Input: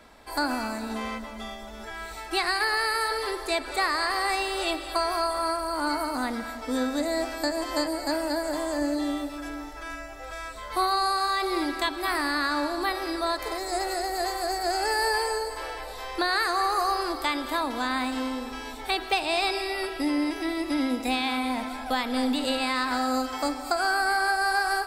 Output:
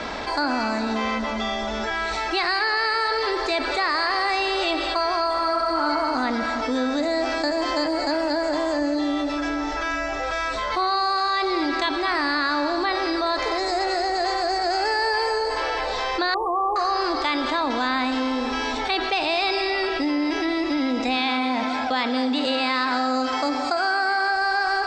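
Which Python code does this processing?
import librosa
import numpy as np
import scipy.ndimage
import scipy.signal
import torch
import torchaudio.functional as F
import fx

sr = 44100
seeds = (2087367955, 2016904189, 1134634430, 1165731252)

y = fx.reverb_throw(x, sr, start_s=5.32, length_s=0.52, rt60_s=2.6, drr_db=1.5)
y = fx.brickwall_bandstop(y, sr, low_hz=1200.0, high_hz=8900.0, at=(16.34, 16.76))
y = fx.highpass(y, sr, hz=84.0, slope=12, at=(21.16, 24.28))
y = scipy.signal.sosfilt(scipy.signal.butter(6, 6400.0, 'lowpass', fs=sr, output='sos'), y)
y = fx.low_shelf(y, sr, hz=100.0, db=-8.5)
y = fx.env_flatten(y, sr, amount_pct=70)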